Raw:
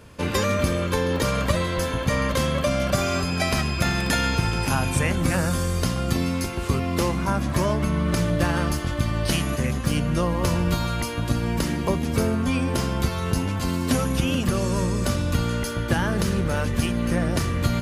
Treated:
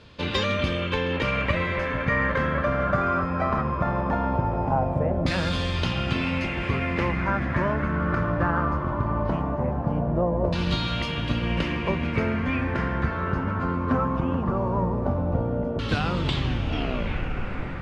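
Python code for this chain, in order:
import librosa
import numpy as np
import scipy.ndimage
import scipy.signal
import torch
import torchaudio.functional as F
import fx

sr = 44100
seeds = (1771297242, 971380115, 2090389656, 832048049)

y = fx.tape_stop_end(x, sr, length_s=2.07)
y = fx.echo_diffused(y, sr, ms=1406, feedback_pct=58, wet_db=-9)
y = fx.filter_lfo_lowpass(y, sr, shape='saw_down', hz=0.19, low_hz=640.0, high_hz=4000.0, q=3.0)
y = y * 10.0 ** (-3.5 / 20.0)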